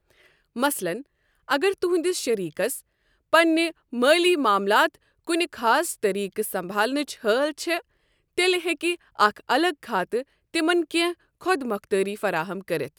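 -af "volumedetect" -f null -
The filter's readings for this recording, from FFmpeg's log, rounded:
mean_volume: -24.5 dB
max_volume: -3.6 dB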